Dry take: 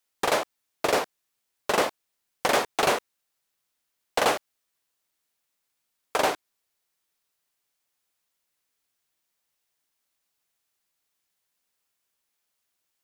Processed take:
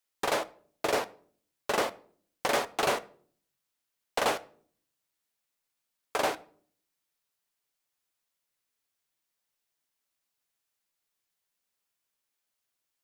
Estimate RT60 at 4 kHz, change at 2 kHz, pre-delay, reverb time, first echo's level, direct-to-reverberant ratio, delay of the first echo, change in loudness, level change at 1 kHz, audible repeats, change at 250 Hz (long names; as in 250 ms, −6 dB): 0.35 s, −4.5 dB, 7 ms, 0.55 s, no echo audible, 10.5 dB, no echo audible, −5.0 dB, −5.0 dB, no echo audible, −4.5 dB